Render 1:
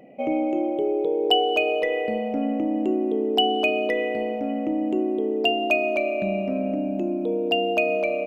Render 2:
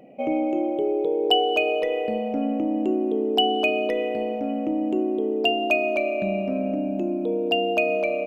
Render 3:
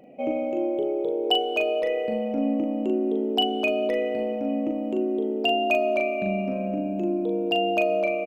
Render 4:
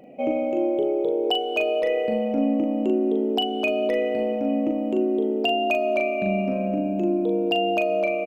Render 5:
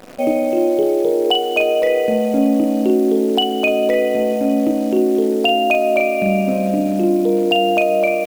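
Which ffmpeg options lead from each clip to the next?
-af "bandreject=f=2000:w=14"
-filter_complex "[0:a]asplit=2[s0][s1];[s1]adelay=40,volume=0.631[s2];[s0][s2]amix=inputs=2:normalize=0,volume=0.75"
-af "alimiter=limit=0.168:level=0:latency=1:release=402,volume=1.41"
-af "acrusher=bits=8:dc=4:mix=0:aa=0.000001,volume=2.24"

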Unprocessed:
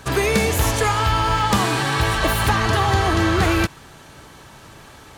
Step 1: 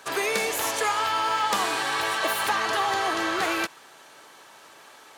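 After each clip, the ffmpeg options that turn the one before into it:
-af "highpass=470,volume=0.631"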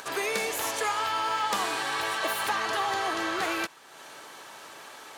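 -af "acompressor=mode=upward:threshold=0.0224:ratio=2.5,volume=0.668"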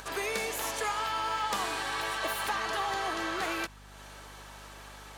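-af "aeval=exprs='val(0)+0.00398*(sin(2*PI*50*n/s)+sin(2*PI*2*50*n/s)/2+sin(2*PI*3*50*n/s)/3+sin(2*PI*4*50*n/s)/4+sin(2*PI*5*50*n/s)/5)':c=same,volume=0.668"

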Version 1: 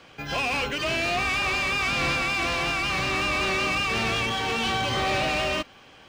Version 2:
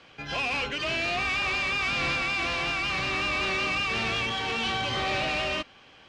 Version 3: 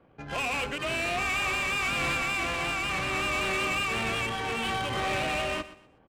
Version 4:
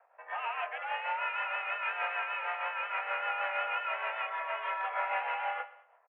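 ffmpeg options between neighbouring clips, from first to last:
-af "lowpass=3600,aemphasis=mode=production:type=75kf,volume=0.596"
-af "adynamicsmooth=sensitivity=3.5:basefreq=670,aecho=1:1:123|246|369:0.168|0.047|0.0132"
-filter_complex "[0:a]asplit=2[s0][s1];[s1]adelay=23,volume=0.282[s2];[s0][s2]amix=inputs=2:normalize=0,tremolo=f=6.4:d=0.46,highpass=f=400:t=q:w=0.5412,highpass=f=400:t=q:w=1.307,lowpass=f=2100:t=q:w=0.5176,lowpass=f=2100:t=q:w=0.7071,lowpass=f=2100:t=q:w=1.932,afreqshift=200"

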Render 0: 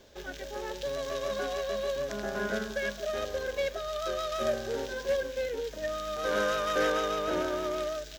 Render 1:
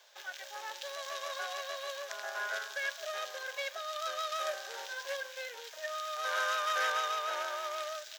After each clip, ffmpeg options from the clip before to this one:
-af "highpass=f=770:w=0.5412,highpass=f=770:w=1.3066"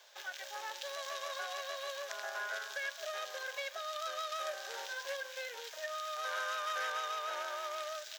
-af "acompressor=threshold=0.01:ratio=2,volume=1.12"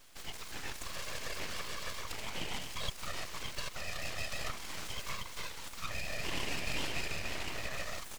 -af "afftfilt=real='hypot(re,im)*cos(2*PI*random(0))':imag='hypot(re,im)*sin(2*PI*random(1))':win_size=512:overlap=0.75,aeval=exprs='abs(val(0))':c=same,volume=2.99"

